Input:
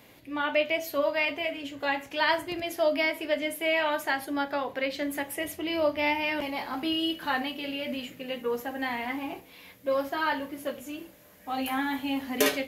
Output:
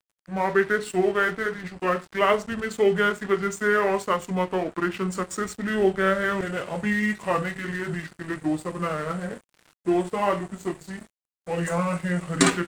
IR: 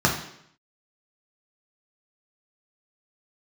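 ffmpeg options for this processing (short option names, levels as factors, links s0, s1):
-af "asetrate=28595,aresample=44100,atempo=1.54221,aeval=exprs='sgn(val(0))*max(abs(val(0))-0.00531,0)':c=same,volume=1.88"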